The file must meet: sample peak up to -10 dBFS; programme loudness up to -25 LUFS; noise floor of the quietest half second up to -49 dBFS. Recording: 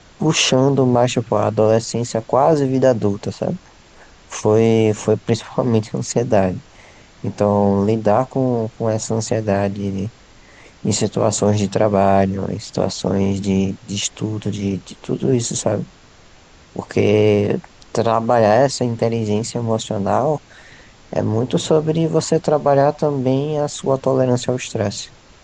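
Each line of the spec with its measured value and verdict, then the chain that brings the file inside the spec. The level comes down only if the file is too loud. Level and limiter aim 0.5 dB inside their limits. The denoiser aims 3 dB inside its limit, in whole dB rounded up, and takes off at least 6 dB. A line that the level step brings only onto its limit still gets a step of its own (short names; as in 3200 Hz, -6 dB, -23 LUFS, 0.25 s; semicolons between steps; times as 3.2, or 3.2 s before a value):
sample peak -3.0 dBFS: fail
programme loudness -18.0 LUFS: fail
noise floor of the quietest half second -46 dBFS: fail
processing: gain -7.5 dB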